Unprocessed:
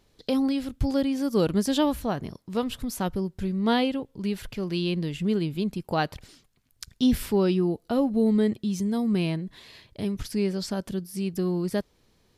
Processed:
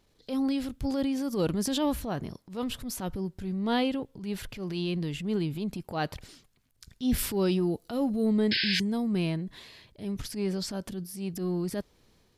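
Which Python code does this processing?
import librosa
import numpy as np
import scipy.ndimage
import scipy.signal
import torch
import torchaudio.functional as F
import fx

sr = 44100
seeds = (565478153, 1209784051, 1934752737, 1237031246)

y = fx.high_shelf(x, sr, hz=3900.0, db=7.0, at=(7.18, 8.26))
y = fx.spec_paint(y, sr, seeds[0], shape='noise', start_s=8.51, length_s=0.29, low_hz=1500.0, high_hz=5300.0, level_db=-25.0)
y = fx.transient(y, sr, attack_db=-9, sustain_db=4)
y = y * librosa.db_to_amplitude(-3.0)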